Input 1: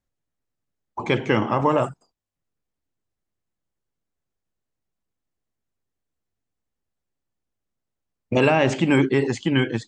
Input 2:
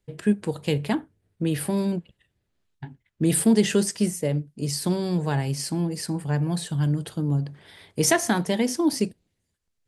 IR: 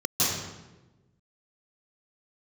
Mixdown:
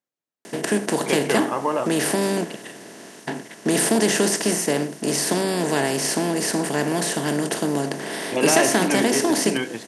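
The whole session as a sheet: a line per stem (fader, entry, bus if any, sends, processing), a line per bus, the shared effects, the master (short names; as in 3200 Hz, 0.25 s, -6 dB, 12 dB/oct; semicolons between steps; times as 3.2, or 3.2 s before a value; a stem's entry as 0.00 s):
-3.0 dB, 0.00 s, no send, dry
-1.0 dB, 0.45 s, no send, per-bin compression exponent 0.4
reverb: off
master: HPF 260 Hz 12 dB/oct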